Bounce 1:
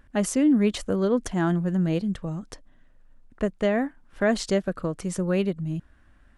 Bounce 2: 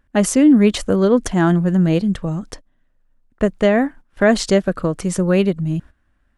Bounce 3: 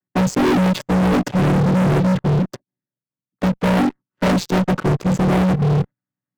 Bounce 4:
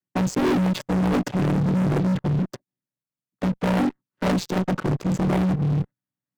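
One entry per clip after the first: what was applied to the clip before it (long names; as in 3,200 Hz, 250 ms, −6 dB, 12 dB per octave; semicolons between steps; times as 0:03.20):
noise gate −43 dBFS, range −15 dB; level +8.5 dB
channel vocoder with a chord as carrier minor triad, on B2; leveller curve on the samples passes 5; asymmetric clip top −9.5 dBFS, bottom −7.5 dBFS; level −6 dB
saturating transformer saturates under 140 Hz; level −3.5 dB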